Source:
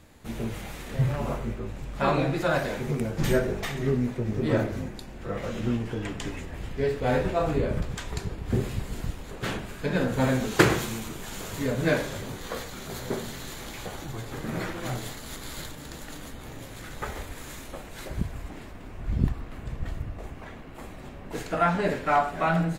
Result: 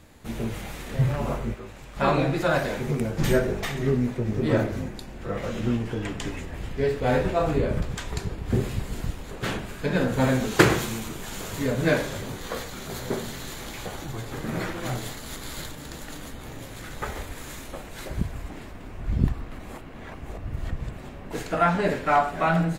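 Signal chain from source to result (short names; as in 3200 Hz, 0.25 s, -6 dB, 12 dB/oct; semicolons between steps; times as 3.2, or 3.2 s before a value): 1.54–1.97 low shelf 410 Hz -11 dB; 19.59–20.97 reverse; gain +2 dB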